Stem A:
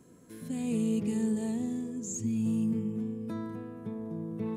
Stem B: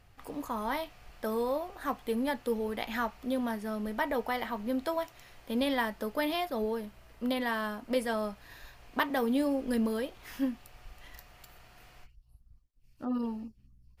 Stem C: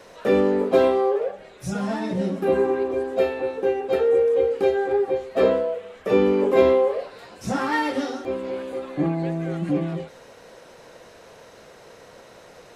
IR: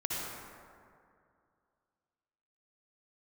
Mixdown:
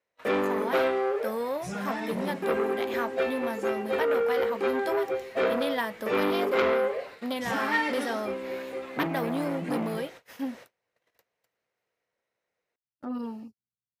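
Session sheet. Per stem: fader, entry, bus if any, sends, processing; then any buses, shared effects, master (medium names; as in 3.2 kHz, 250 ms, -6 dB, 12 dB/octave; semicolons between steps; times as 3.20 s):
-19.0 dB, 1.50 s, no send, none
+1.5 dB, 0.00 s, no send, high-pass 91 Hz 24 dB/octave
-4.5 dB, 0.00 s, no send, peaking EQ 2.1 kHz +8.5 dB 0.64 oct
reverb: none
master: gate -43 dBFS, range -34 dB; bass shelf 170 Hz -7 dB; transformer saturation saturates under 1.7 kHz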